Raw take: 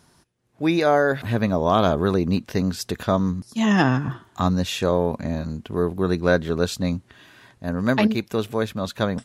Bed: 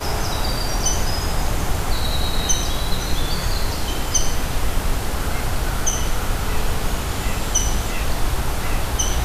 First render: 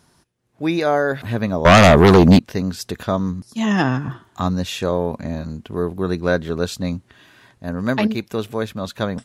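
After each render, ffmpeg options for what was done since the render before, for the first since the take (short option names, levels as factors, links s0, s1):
-filter_complex "[0:a]asettb=1/sr,asplit=3[s0][s1][s2];[s0]atrim=end=1.654[s3];[s1]atrim=start=1.65:end=2.39,asetpts=PTS-STARTPTS,afade=t=in:d=0.004:c=qsin,afade=t=out:st=0.736:d=0.004:c=qsin,aeval=exprs='0.562*sin(PI/2*3.55*val(0)/0.562)':c=same[s4];[s2]atrim=start=2.386[s5];[s3][s4]acrossfade=d=0.004:c1=hsin:c2=qsin[s6];[s6][s5]acrossfade=d=0.004:c1=qsin:c2=hsin"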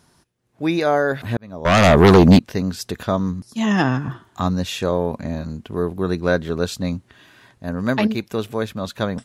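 -filter_complex "[0:a]asplit=2[s0][s1];[s0]atrim=end=1.37,asetpts=PTS-STARTPTS,afade=t=out:st=1.366:d=0.004:c=hsin[s2];[s1]atrim=start=1.37,asetpts=PTS-STARTPTS,afade=t=in:d=0.68[s3];[s2][s3]concat=n=2:v=0:a=1"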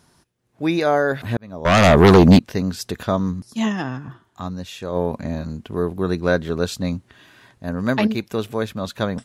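-filter_complex "[0:a]asplit=3[s0][s1][s2];[s0]atrim=end=3.99,asetpts=PTS-STARTPTS,afade=t=out:st=3.67:d=0.32:c=exp:silence=0.375837[s3];[s1]atrim=start=3.99:end=4.65,asetpts=PTS-STARTPTS,volume=0.376[s4];[s2]atrim=start=4.65,asetpts=PTS-STARTPTS,afade=t=in:d=0.32:c=exp:silence=0.375837[s5];[s3][s4][s5]concat=n=3:v=0:a=1"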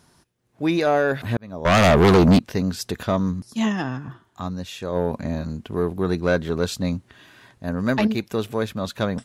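-af "asoftclip=type=tanh:threshold=0.316"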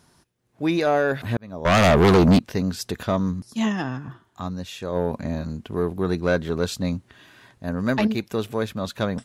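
-af "volume=0.891"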